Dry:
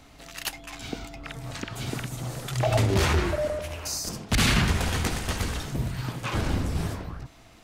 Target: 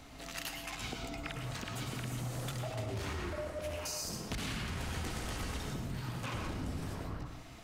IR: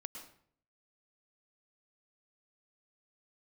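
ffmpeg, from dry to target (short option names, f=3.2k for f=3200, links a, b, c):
-filter_complex "[0:a]alimiter=limit=-22dB:level=0:latency=1:release=22,acompressor=threshold=-36dB:ratio=6,asettb=1/sr,asplit=3[a][b][c];[a]atrim=end=1.464[d];[b]atrim=start=1.46:end=3.76,asetpts=PTS-STARTPTS,afade=t=in:d=0.004:c=qsin,afade=t=out:st=2.296:d=0.004:c=qsin,asoftclip=type=hard:threshold=-33dB[e];[c]atrim=start=3.756[f];[d][e]acrossfade=d=0.004:c1=hsin:c2=qsin[g];[g][f]acrossfade=d=0.004:c1=qsin:c2=hsin[h];[1:a]atrim=start_sample=2205[i];[h][i]afir=irnorm=-1:irlink=0,volume=3.5dB"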